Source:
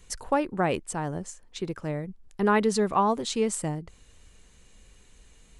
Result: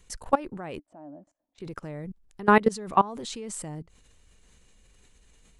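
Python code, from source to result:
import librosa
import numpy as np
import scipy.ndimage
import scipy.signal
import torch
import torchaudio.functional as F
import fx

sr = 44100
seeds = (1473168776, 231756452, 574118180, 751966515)

y = fx.level_steps(x, sr, step_db=21)
y = fx.double_bandpass(y, sr, hz=430.0, octaves=1.1, at=(0.78, 1.58), fade=0.02)
y = y * 10.0 ** (5.5 / 20.0)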